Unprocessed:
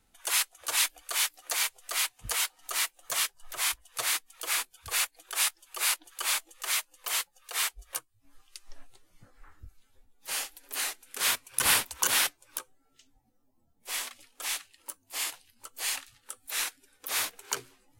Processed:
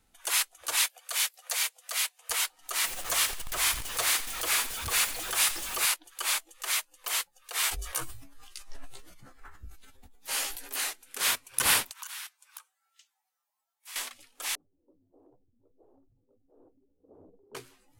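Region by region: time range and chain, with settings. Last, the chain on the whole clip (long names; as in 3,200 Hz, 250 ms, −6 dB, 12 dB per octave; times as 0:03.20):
0:00.85–0:02.30: dynamic equaliser 990 Hz, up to −4 dB, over −46 dBFS, Q 0.9 + Butterworth high-pass 460 Hz 96 dB per octave
0:02.84–0:05.86: converter with a step at zero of −31 dBFS + echo with shifted repeats 87 ms, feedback 37%, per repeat −45 Hz, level −14 dB
0:07.62–0:10.77: double-tracking delay 15 ms −3.5 dB + level that may fall only so fast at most 56 dB per second
0:11.91–0:13.96: high-pass filter 950 Hz 24 dB per octave + downward compressor 2.5 to 1, threshold −45 dBFS
0:14.55–0:17.55: inverse Chebyshev low-pass filter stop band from 1,900 Hz, stop band 70 dB + low-shelf EQ 250 Hz −6 dB + transient designer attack 0 dB, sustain +8 dB
whole clip: no processing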